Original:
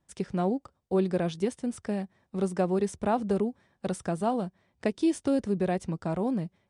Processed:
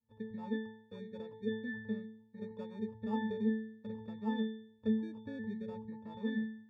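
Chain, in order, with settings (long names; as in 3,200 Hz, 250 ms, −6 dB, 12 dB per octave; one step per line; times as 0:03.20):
decimation without filtering 22×
gate on every frequency bin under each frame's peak −30 dB strong
resonances in every octave A, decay 0.63 s
level +9 dB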